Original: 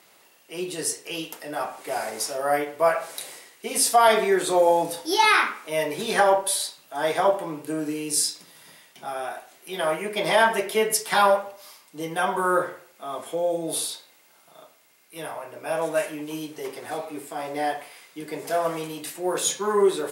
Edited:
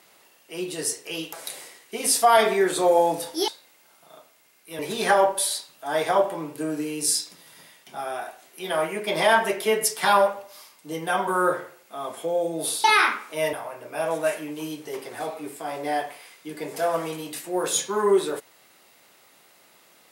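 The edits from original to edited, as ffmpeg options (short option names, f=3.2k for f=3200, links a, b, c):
-filter_complex "[0:a]asplit=6[a][b][c][d][e][f];[a]atrim=end=1.332[g];[b]atrim=start=3.038:end=5.192[h];[c]atrim=start=13.928:end=15.242[i];[d]atrim=start=5.878:end=13.932[j];[e]atrim=start=5.188:end=5.882[k];[f]atrim=start=15.238[l];[g][h]acrossfade=d=0.004:c1=hsin:c2=hsin[m];[m][i]acrossfade=d=0.004:c1=hsin:c2=hsin[n];[n][j]acrossfade=d=0.004:c1=hsin:c2=hsin[o];[o][k]acrossfade=d=0.004:c1=hsin:c2=hsin[p];[p][l]acrossfade=d=0.004:c1=hsin:c2=hsin"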